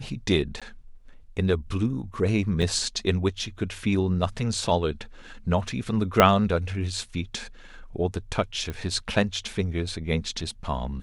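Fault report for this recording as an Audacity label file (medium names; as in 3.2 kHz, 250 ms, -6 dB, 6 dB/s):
0.600000	0.620000	dropout 16 ms
2.620000	2.620000	dropout 4.8 ms
6.200000	6.200000	pop -2 dBFS
8.700000	8.700000	pop -20 dBFS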